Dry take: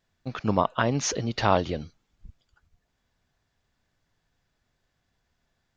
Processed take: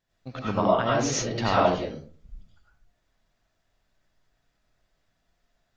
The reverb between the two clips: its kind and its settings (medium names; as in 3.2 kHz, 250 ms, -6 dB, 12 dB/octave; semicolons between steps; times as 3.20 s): algorithmic reverb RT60 0.47 s, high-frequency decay 0.5×, pre-delay 55 ms, DRR -6.5 dB; trim -5.5 dB